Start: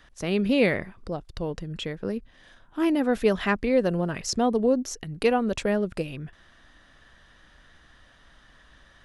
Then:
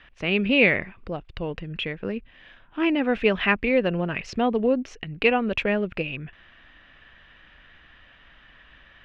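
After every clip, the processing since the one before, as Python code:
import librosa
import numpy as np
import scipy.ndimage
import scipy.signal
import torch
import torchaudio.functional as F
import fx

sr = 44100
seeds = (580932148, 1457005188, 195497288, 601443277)

y = fx.lowpass_res(x, sr, hz=2600.0, q=3.7)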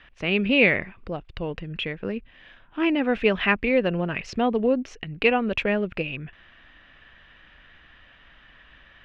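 y = x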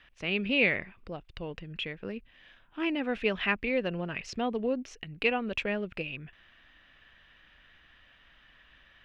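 y = fx.high_shelf(x, sr, hz=4100.0, db=10.0)
y = F.gain(torch.from_numpy(y), -8.5).numpy()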